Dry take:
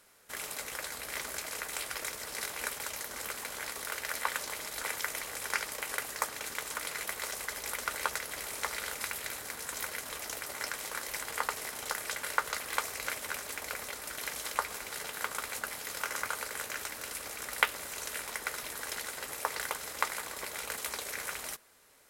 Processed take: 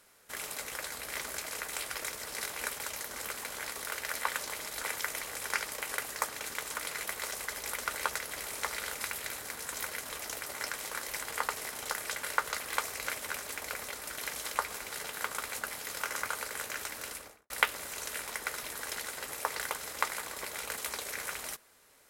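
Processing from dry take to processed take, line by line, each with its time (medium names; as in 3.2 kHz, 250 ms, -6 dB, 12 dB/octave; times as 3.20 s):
17.06–17.50 s: studio fade out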